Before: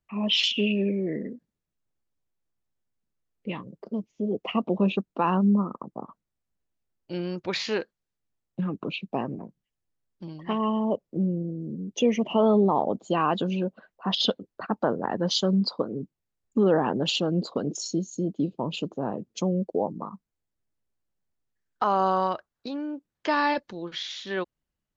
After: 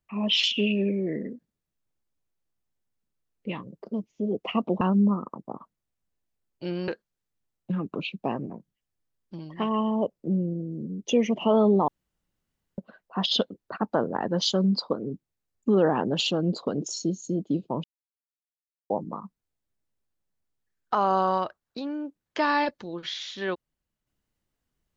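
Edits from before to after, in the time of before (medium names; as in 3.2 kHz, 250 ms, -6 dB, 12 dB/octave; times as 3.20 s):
4.81–5.29 s: delete
7.36–7.77 s: delete
12.77–13.67 s: room tone
18.73–19.79 s: mute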